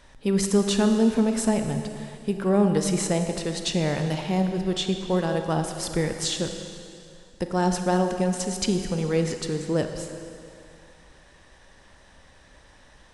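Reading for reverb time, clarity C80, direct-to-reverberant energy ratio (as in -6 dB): 2.5 s, 7.0 dB, 5.5 dB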